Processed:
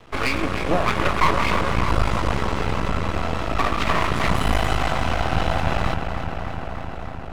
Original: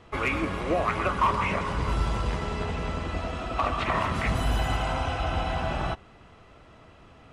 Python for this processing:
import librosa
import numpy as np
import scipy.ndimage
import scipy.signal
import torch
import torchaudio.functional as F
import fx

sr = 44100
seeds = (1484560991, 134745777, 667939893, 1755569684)

y = fx.echo_filtered(x, sr, ms=303, feedback_pct=82, hz=3600.0, wet_db=-8.0)
y = np.maximum(y, 0.0)
y = y + 10.0 ** (-20.5 / 20.0) * np.pad(y, (int(1148 * sr / 1000.0), 0))[:len(y)]
y = y * 10.0 ** (8.5 / 20.0)